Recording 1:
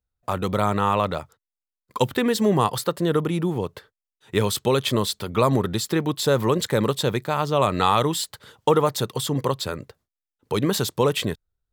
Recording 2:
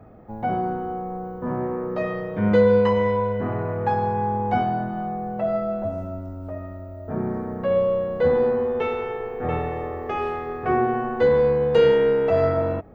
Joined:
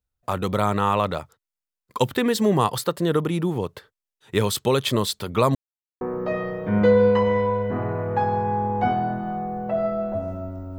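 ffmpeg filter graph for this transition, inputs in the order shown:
ffmpeg -i cue0.wav -i cue1.wav -filter_complex "[0:a]apad=whole_dur=10.78,atrim=end=10.78,asplit=2[link_01][link_02];[link_01]atrim=end=5.55,asetpts=PTS-STARTPTS,afade=type=out:start_time=5.546:duration=0.004:curve=hsin[link_03];[link_02]atrim=start=5.55:end=6.01,asetpts=PTS-STARTPTS,volume=0[link_04];[1:a]atrim=start=1.71:end=6.48,asetpts=PTS-STARTPTS,afade=type=in:duration=0.004:curve=hsin[link_05];[link_03][link_04][link_05]concat=n=3:v=0:a=1" out.wav

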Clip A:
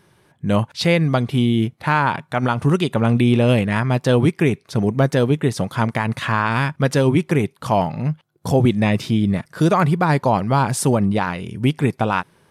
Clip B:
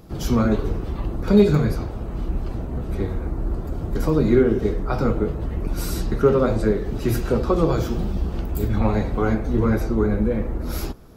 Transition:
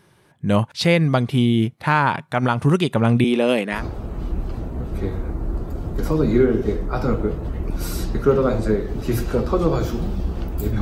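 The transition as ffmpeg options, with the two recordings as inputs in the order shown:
ffmpeg -i cue0.wav -i cue1.wav -filter_complex "[0:a]asettb=1/sr,asplit=3[link_01][link_02][link_03];[link_01]atrim=end=3.244[link_04];[link_02]atrim=start=3.24:end=3.85,asetpts=PTS-STARTPTS,afade=type=in:duration=0.004:curve=qsin,afade=type=out:start_time=0.606:duration=0.004:curve=qsin,highpass=frequency=240:width=0.5412,highpass=frequency=240:width=1.3066[link_05];[link_03]atrim=start=3.846[link_06];[link_04][link_05]acrossfade=duration=0.004:curve1=hsin:curve2=qsin[link_07];[link_07][link_06]acrossfade=duration=0.004:curve1=qsin:curve2=hsin,apad=whole_dur=10.81,atrim=end=10.81,atrim=end=3.85,asetpts=PTS-STARTPTS[link_08];[1:a]atrim=start=1.68:end=8.78,asetpts=PTS-STARTPTS[link_09];[link_08][link_09]acrossfade=duration=0.14:curve1=tri:curve2=tri" out.wav

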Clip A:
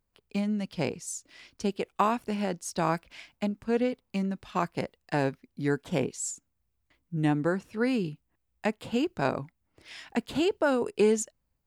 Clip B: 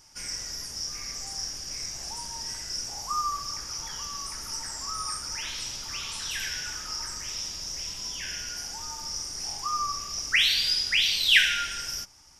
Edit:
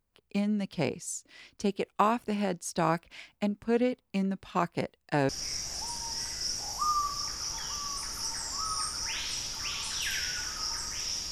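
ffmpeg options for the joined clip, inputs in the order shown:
ffmpeg -i cue0.wav -i cue1.wav -filter_complex "[0:a]apad=whole_dur=11.31,atrim=end=11.31,atrim=end=5.292[link_01];[1:a]atrim=start=1.578:end=7.6[link_02];[link_01][link_02]acrossfade=duration=0.004:curve1=hsin:curve2=hsin" out.wav

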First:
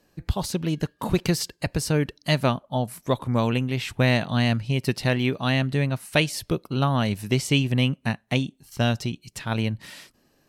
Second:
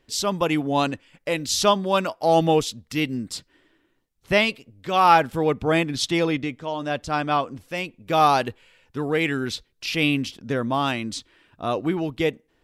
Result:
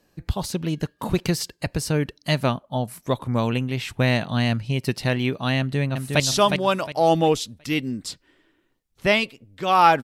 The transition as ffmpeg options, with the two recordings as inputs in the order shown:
ffmpeg -i cue0.wav -i cue1.wav -filter_complex "[0:a]apad=whole_dur=10.03,atrim=end=10.03,atrim=end=6.202[link_01];[1:a]atrim=start=1.458:end=5.29[link_02];[link_01][link_02]acrossfade=duration=0.004:curve1=hsin:curve2=hsin,asplit=2[link_03][link_04];[link_04]afade=type=in:start_time=5.59:duration=0.01,afade=type=out:start_time=6.2:duration=0.01,aecho=0:1:360|720|1080|1440:0.595662|0.178699|0.0536096|0.0160829[link_05];[link_03][link_05]amix=inputs=2:normalize=0" out.wav

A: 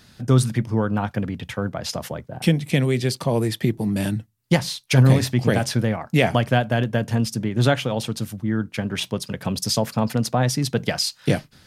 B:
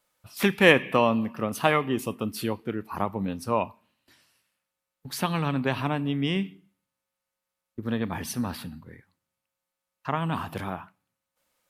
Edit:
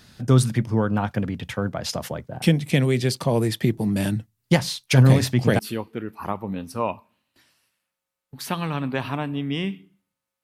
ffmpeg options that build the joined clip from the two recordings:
ffmpeg -i cue0.wav -i cue1.wav -filter_complex "[0:a]apad=whole_dur=10.43,atrim=end=10.43,atrim=end=5.592[link_01];[1:a]atrim=start=2.308:end=7.15[link_02];[link_01][link_02]acrossfade=duration=0.004:curve1=hsin:curve2=hsin" out.wav

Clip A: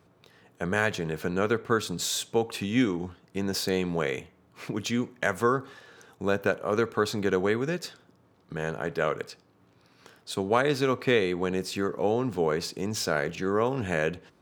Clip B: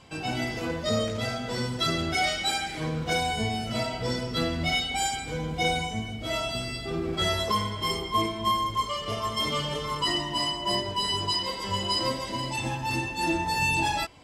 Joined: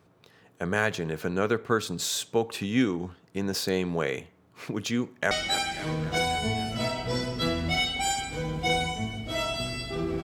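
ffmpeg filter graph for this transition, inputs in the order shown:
ffmpeg -i cue0.wav -i cue1.wav -filter_complex "[0:a]apad=whole_dur=10.23,atrim=end=10.23,atrim=end=5.312[link_01];[1:a]atrim=start=2.258:end=7.18[link_02];[link_01][link_02]acrossfade=duration=0.004:curve1=hsin:curve2=hsin,asplit=2[link_03][link_04];[link_04]afade=type=in:start_time=5.03:duration=0.01,afade=type=out:start_time=5.31:duration=0.01,aecho=0:1:270|540|810|1080|1350|1620|1890|2160|2430:0.237137|0.165996|0.116197|0.0813381|0.0569367|0.0398557|0.027899|0.0195293|0.0136705[link_05];[link_03][link_05]amix=inputs=2:normalize=0" out.wav

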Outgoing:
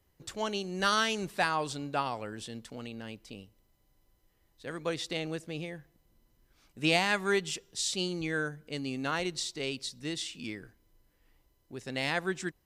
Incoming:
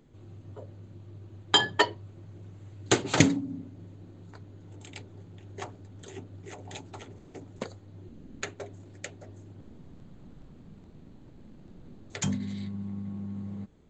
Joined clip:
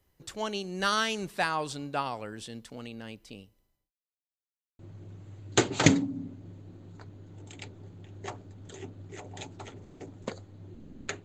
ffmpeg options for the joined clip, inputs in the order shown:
ffmpeg -i cue0.wav -i cue1.wav -filter_complex "[0:a]apad=whole_dur=11.24,atrim=end=11.24,asplit=2[link_01][link_02];[link_01]atrim=end=3.91,asetpts=PTS-STARTPTS,afade=type=out:start_time=3.25:duration=0.66:curve=qsin[link_03];[link_02]atrim=start=3.91:end=4.79,asetpts=PTS-STARTPTS,volume=0[link_04];[1:a]atrim=start=2.13:end=8.58,asetpts=PTS-STARTPTS,afade=type=in:duration=0.004:curve=hsin[link_05];[link_03][link_04][link_05]concat=n=3:v=0:a=1" out.wav

